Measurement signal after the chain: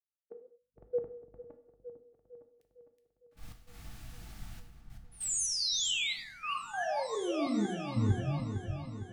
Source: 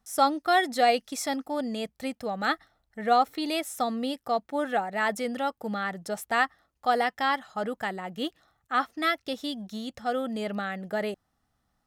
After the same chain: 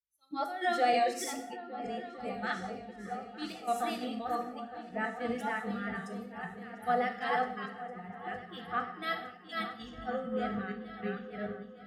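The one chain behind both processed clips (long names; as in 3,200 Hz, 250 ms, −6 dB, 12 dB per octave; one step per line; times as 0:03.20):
delay that plays each chunk backwards 311 ms, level −1.5 dB
high-shelf EQ 2,000 Hz −8.5 dB
mains hum 50 Hz, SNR 23 dB
parametric band 450 Hz −3.5 dB 1.8 octaves
gate pattern "..x.xxxxxx" 98 BPM −12 dB
pitch vibrato 2.6 Hz 49 cents
notch filter 1,000 Hz, Q 6.2
in parallel at −2.5 dB: brickwall limiter −24 dBFS
on the sum: noise reduction from a noise print of the clip's start 22 dB
echo whose low-pass opens from repeat to repeat 456 ms, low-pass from 400 Hz, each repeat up 2 octaves, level −6 dB
reverb whose tail is shaped and stops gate 260 ms falling, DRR 5 dB
multiband upward and downward expander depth 70%
level −8.5 dB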